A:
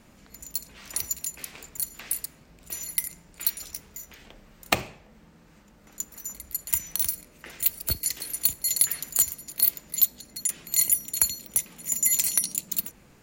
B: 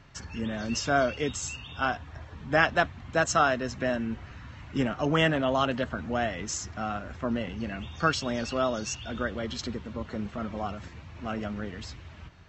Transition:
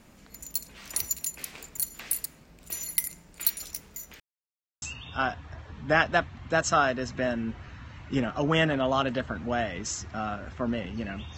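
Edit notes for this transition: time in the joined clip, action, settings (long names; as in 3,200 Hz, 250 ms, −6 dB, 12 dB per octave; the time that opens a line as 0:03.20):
A
0:04.20–0:04.82: silence
0:04.82: continue with B from 0:01.45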